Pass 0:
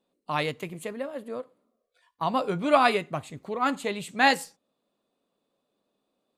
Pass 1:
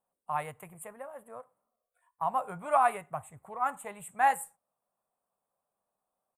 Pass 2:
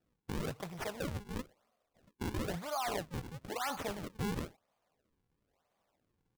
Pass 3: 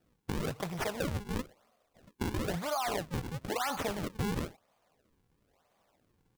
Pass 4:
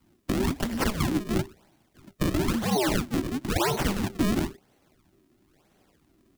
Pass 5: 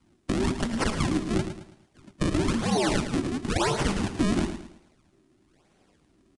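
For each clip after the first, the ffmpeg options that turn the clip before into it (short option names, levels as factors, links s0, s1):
-af "firequalizer=gain_entry='entry(100,0);entry(280,-17);entry(760,5);entry(4900,-30);entry(8200,6)':delay=0.05:min_phase=1,volume=0.531"
-af "areverse,acompressor=threshold=0.0251:ratio=12,areverse,alimiter=level_in=3.16:limit=0.0631:level=0:latency=1:release=17,volume=0.316,acrusher=samples=40:mix=1:aa=0.000001:lfo=1:lforange=64:lforate=1,volume=2"
-af "acompressor=threshold=0.0141:ratio=6,volume=2.37"
-af "afreqshift=-400,volume=2.66"
-filter_complex "[0:a]asplit=2[s0][s1];[s1]aecho=0:1:109|218|327|436:0.335|0.121|0.0434|0.0156[s2];[s0][s2]amix=inputs=2:normalize=0,aresample=22050,aresample=44100"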